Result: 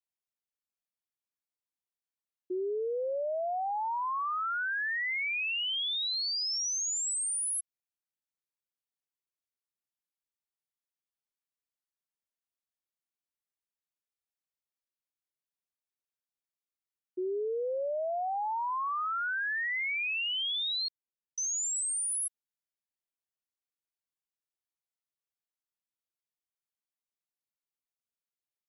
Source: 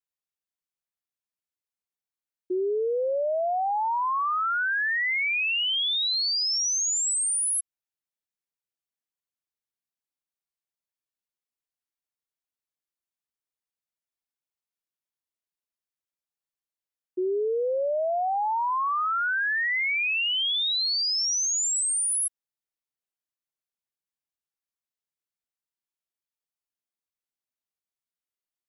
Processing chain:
0:20.88–0:21.38: Butterworth low-pass 510 Hz
level −6.5 dB

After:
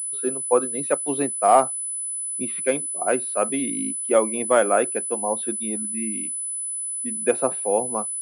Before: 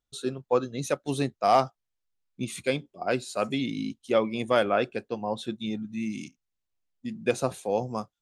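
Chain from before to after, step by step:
three-way crossover with the lows and the highs turned down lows −22 dB, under 220 Hz, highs −14 dB, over 2,300 Hz
low-pass that shuts in the quiet parts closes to 2,900 Hz, open at −24.5 dBFS
switching amplifier with a slow clock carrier 10,000 Hz
level +5.5 dB

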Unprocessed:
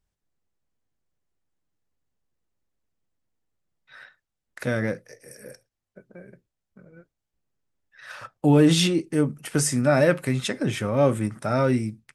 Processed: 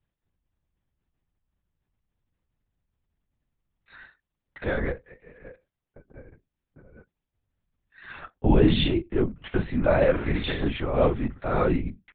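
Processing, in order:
0:10.11–0:10.69: flutter between parallel walls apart 6.9 metres, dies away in 0.68 s
linear-prediction vocoder at 8 kHz whisper
level −1.5 dB

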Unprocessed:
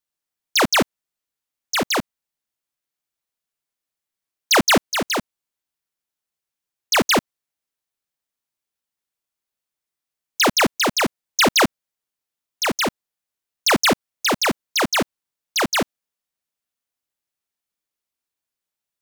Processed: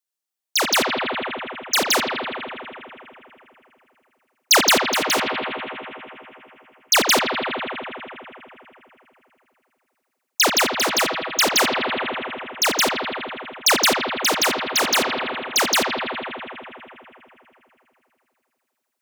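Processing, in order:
bass and treble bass −11 dB, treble +5 dB
on a send: bucket-brigade delay 81 ms, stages 2,048, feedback 83%, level −6.5 dB
on the sum: speech leveller within 3 dB 0.5 s
level −1.5 dB

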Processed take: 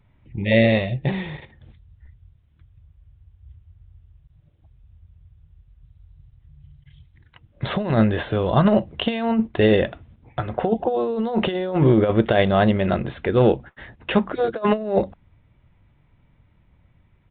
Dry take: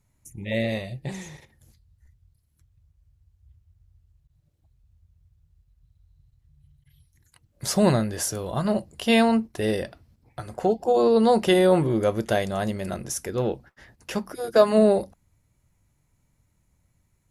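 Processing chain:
compressor whose output falls as the input rises −23 dBFS, ratio −0.5
downsampling to 8,000 Hz
level +6.5 dB

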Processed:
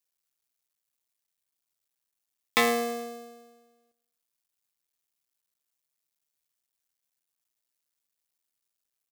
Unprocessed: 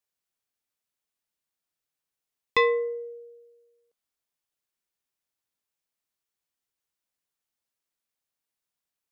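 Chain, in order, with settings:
sub-harmonics by changed cycles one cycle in 2, muted
high-shelf EQ 3,600 Hz +8 dB
repeating echo 106 ms, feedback 54%, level −21.5 dB

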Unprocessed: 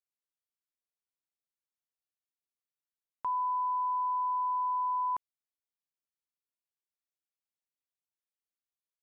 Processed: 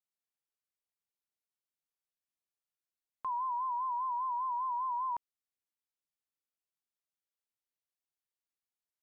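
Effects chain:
pitch vibrato 5 Hz 84 cents
level −3.5 dB

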